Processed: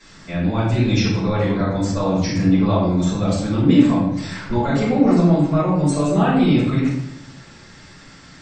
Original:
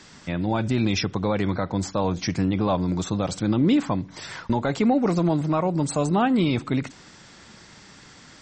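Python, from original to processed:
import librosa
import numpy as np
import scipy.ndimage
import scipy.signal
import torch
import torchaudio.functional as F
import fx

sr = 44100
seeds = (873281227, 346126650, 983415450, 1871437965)

y = fx.room_shoebox(x, sr, seeds[0], volume_m3=200.0, walls='mixed', distance_m=5.8)
y = y * 10.0 ** (-11.5 / 20.0)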